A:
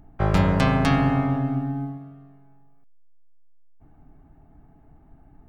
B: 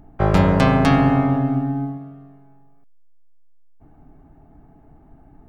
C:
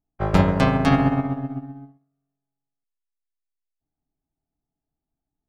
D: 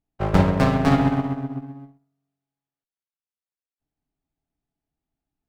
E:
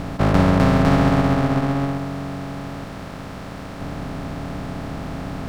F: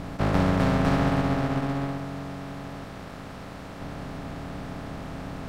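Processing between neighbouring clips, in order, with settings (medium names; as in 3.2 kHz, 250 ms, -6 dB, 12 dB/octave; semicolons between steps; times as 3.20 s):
peaking EQ 450 Hz +4.5 dB 2.6 oct; trim +2 dB
upward expansion 2.5:1, over -37 dBFS
sliding maximum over 9 samples
spectral levelling over time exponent 0.2; trim -3 dB
trim -7 dB; AAC 48 kbps 44.1 kHz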